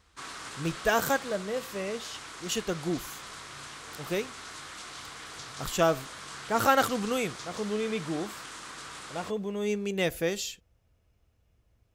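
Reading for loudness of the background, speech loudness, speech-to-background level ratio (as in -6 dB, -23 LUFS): -41.5 LUFS, -30.5 LUFS, 11.0 dB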